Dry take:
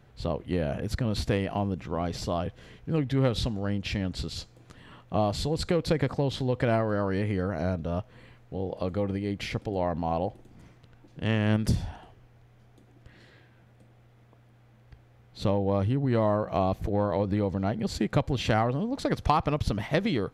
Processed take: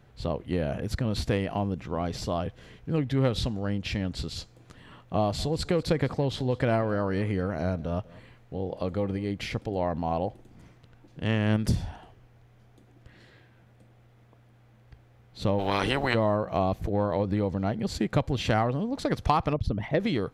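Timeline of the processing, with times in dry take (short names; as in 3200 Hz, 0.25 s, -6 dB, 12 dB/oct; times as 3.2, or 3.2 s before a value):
5.19–9.31 echo 0.195 s -21.5 dB
15.58–16.13 spectral limiter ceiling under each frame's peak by 29 dB
19.53–20 formant sharpening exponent 1.5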